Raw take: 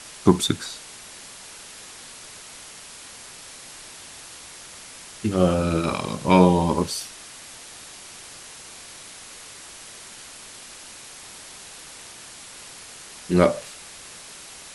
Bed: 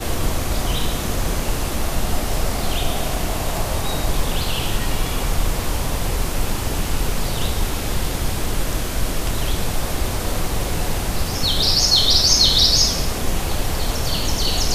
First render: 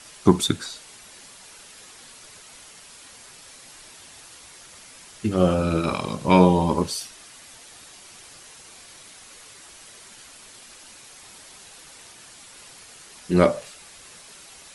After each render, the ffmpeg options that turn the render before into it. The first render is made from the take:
ffmpeg -i in.wav -af "afftdn=noise_reduction=6:noise_floor=-43" out.wav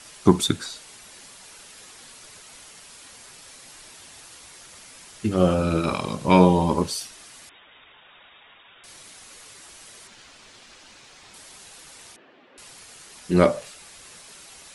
ffmpeg -i in.wav -filter_complex "[0:a]asettb=1/sr,asplit=3[link_01][link_02][link_03];[link_01]atrim=end=7.494[link_04];[link_02]atrim=start=7.49:end=8.84,asetpts=PTS-STARTPTS,afade=type=in:duration=0.004:curve=qsin,afade=type=out:start_time=1.346:duration=0.004:curve=qsin,lowpass=frequency=3200:width_type=q:width=0.5098,lowpass=frequency=3200:width_type=q:width=0.6013,lowpass=frequency=3200:width_type=q:width=0.9,lowpass=frequency=3200:width_type=q:width=2.563,afreqshift=-3800[link_05];[link_03]atrim=start=8.836[link_06];[link_04][link_05]acrossfade=duration=0.004:curve1=hsin:curve2=qsin[link_07];[link_07][link_06]acrossfade=duration=0.004:curve1=qsin:curve2=hsin,asettb=1/sr,asplit=3[link_08][link_09][link_10];[link_08]atrim=end=10.074[link_11];[link_09]atrim=start=10.07:end=11.34,asetpts=PTS-STARTPTS,afade=type=in:duration=0.004:curve=qsin,afade=type=out:start_time=1.266:duration=0.004:curve=qsin,lowpass=5600[link_12];[link_10]atrim=start=11.336[link_13];[link_11][link_12]acrossfade=duration=0.004:curve1=hsin:curve2=qsin[link_14];[link_14][link_13]acrossfade=duration=0.004:curve1=qsin:curve2=hsin,asettb=1/sr,asplit=3[link_15][link_16][link_17];[link_15]atrim=end=12.164[link_18];[link_16]atrim=start=12.16:end=12.58,asetpts=PTS-STARTPTS,afade=type=in:duration=0.004:curve=qsin,afade=type=out:start_time=0.416:duration=0.004:curve=qsin,highpass=250,equalizer=frequency=260:width_type=q:width=4:gain=8,equalizer=frequency=380:width_type=q:width=4:gain=7,equalizer=frequency=550:width_type=q:width=4:gain=5,equalizer=frequency=950:width_type=q:width=4:gain=-4,equalizer=frequency=1400:width_type=q:width=4:gain=-5,equalizer=frequency=2200:width_type=q:width=4:gain=-6,lowpass=frequency=2500:width=0.5412,lowpass=frequency=2500:width=1.3066[link_19];[link_17]atrim=start=12.576[link_20];[link_18][link_19]acrossfade=duration=0.004:curve1=hsin:curve2=qsin[link_21];[link_21][link_20]acrossfade=duration=0.004:curve1=qsin:curve2=hsin" out.wav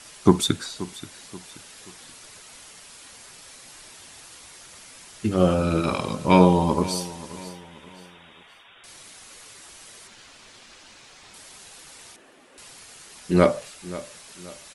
ffmpeg -i in.wav -af "aecho=1:1:530|1060|1590:0.141|0.0551|0.0215" out.wav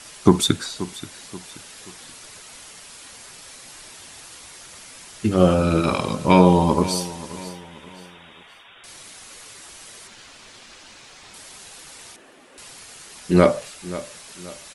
ffmpeg -i in.wav -af "volume=3.5dB,alimiter=limit=-1dB:level=0:latency=1" out.wav

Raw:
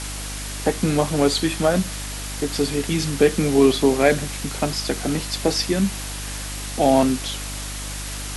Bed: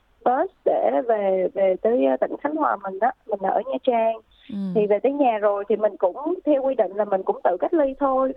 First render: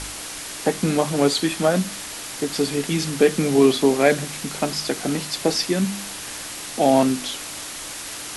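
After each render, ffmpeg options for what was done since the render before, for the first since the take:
ffmpeg -i in.wav -af "bandreject=frequency=50:width_type=h:width=4,bandreject=frequency=100:width_type=h:width=4,bandreject=frequency=150:width_type=h:width=4,bandreject=frequency=200:width_type=h:width=4,bandreject=frequency=250:width_type=h:width=4" out.wav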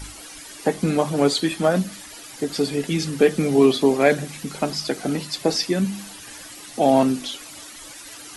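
ffmpeg -i in.wav -af "afftdn=noise_reduction=12:noise_floor=-34" out.wav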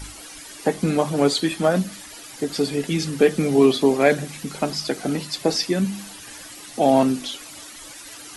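ffmpeg -i in.wav -af anull out.wav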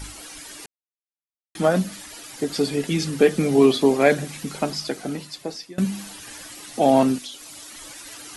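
ffmpeg -i in.wav -filter_complex "[0:a]asettb=1/sr,asplit=3[link_01][link_02][link_03];[link_01]atrim=end=7.184[link_04];[link_02]atrim=start=7.18:end=7.71,asetpts=PTS-STARTPTS,afade=type=in:duration=0.004:curve=qsin,afade=type=out:start_time=0.526:duration=0.004:curve=qsin,acrossover=split=1500|3000[link_05][link_06][link_07];[link_05]acompressor=threshold=-48dB:ratio=4[link_08];[link_06]acompressor=threshold=-53dB:ratio=4[link_09];[link_07]acompressor=threshold=-35dB:ratio=4[link_10];[link_08][link_09][link_10]amix=inputs=3:normalize=0[link_11];[link_03]atrim=start=7.706[link_12];[link_04][link_11]acrossfade=duration=0.004:curve1=hsin:curve2=qsin[link_13];[link_13][link_12]acrossfade=duration=0.004:curve1=qsin:curve2=hsin,asplit=4[link_14][link_15][link_16][link_17];[link_14]atrim=end=0.66,asetpts=PTS-STARTPTS,afade=type=out:start_time=0.656:duration=0.004:curve=hsin[link_18];[link_15]atrim=start=0.66:end=1.55,asetpts=PTS-STARTPTS,volume=0[link_19];[link_16]atrim=start=1.55:end=5.78,asetpts=PTS-STARTPTS,afade=type=in:duration=0.004:curve=hsin,afade=type=out:start_time=2.97:duration=1.26:silence=0.0794328[link_20];[link_17]atrim=start=5.78,asetpts=PTS-STARTPTS,afade=type=in:duration=0.004:curve=hsin:silence=0.0794328[link_21];[link_18][link_19][link_20][link_21]concat=n=4:v=0:a=1" out.wav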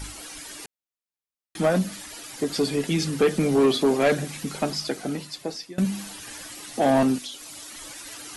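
ffmpeg -i in.wav -af "asoftclip=type=tanh:threshold=-13dB" out.wav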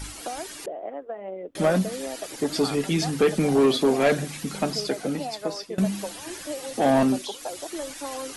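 ffmpeg -i in.wav -i bed.wav -filter_complex "[1:a]volume=-14.5dB[link_01];[0:a][link_01]amix=inputs=2:normalize=0" out.wav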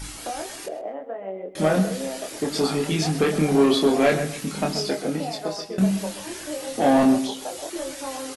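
ffmpeg -i in.wav -filter_complex "[0:a]asplit=2[link_01][link_02];[link_02]adelay=26,volume=-3.5dB[link_03];[link_01][link_03]amix=inputs=2:normalize=0,asplit=2[link_04][link_05];[link_05]adelay=129,lowpass=frequency=3000:poles=1,volume=-10.5dB,asplit=2[link_06][link_07];[link_07]adelay=129,lowpass=frequency=3000:poles=1,volume=0.25,asplit=2[link_08][link_09];[link_09]adelay=129,lowpass=frequency=3000:poles=1,volume=0.25[link_10];[link_06][link_08][link_10]amix=inputs=3:normalize=0[link_11];[link_04][link_11]amix=inputs=2:normalize=0" out.wav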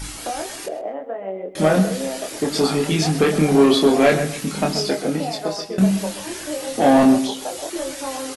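ffmpeg -i in.wav -af "volume=4dB" out.wav

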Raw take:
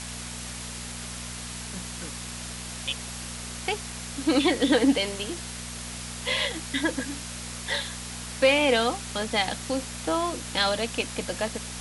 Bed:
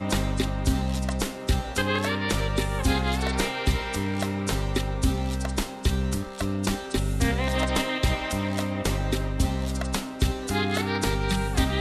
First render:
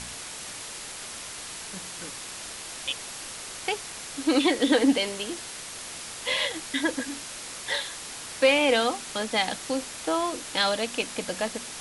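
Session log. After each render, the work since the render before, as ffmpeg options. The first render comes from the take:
ffmpeg -i in.wav -af "bandreject=frequency=60:width_type=h:width=4,bandreject=frequency=120:width_type=h:width=4,bandreject=frequency=180:width_type=h:width=4,bandreject=frequency=240:width_type=h:width=4" out.wav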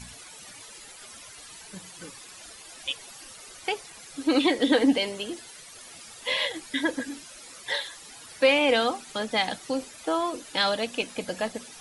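ffmpeg -i in.wav -af "afftdn=noise_reduction=13:noise_floor=-39" out.wav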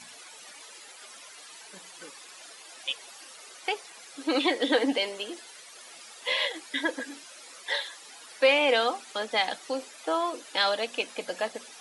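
ffmpeg -i in.wav -af "highpass=390,highshelf=frequency=9200:gain=-7.5" out.wav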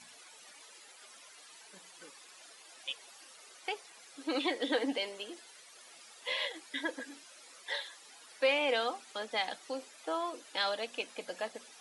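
ffmpeg -i in.wav -af "volume=-7.5dB" out.wav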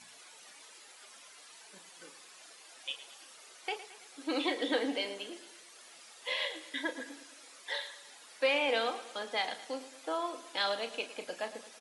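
ffmpeg -i in.wav -filter_complex "[0:a]asplit=2[link_01][link_02];[link_02]adelay=35,volume=-10.5dB[link_03];[link_01][link_03]amix=inputs=2:normalize=0,aecho=1:1:110|220|330|440|550:0.188|0.0998|0.0529|0.028|0.0149" out.wav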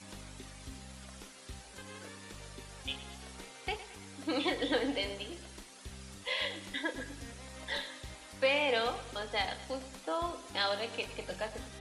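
ffmpeg -i in.wav -i bed.wav -filter_complex "[1:a]volume=-24dB[link_01];[0:a][link_01]amix=inputs=2:normalize=0" out.wav

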